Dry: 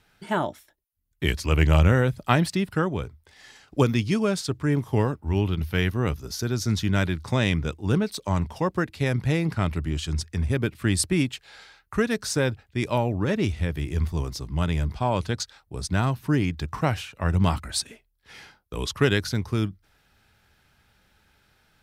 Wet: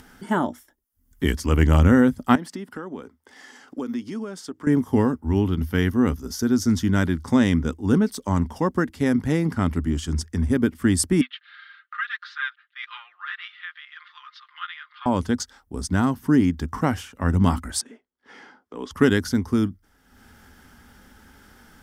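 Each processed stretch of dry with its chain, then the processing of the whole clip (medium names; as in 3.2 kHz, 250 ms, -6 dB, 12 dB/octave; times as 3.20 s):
2.35–4.67 s: high-pass 260 Hz + treble shelf 5.6 kHz -7 dB + compression 2.5:1, threshold -37 dBFS
11.21–15.06 s: Chebyshev band-pass 1.2–4 kHz, order 4 + comb 5.7 ms, depth 100%
17.81–18.91 s: high-pass 300 Hz + transient shaper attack -3 dB, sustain +1 dB + tape spacing loss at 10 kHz 21 dB
whole clip: graphic EQ with 31 bands 125 Hz -11 dB, 250 Hz +12 dB, 630 Hz -5 dB, 2.5 kHz -11 dB, 4 kHz -11 dB; upward compressor, threshold -42 dBFS; trim +2.5 dB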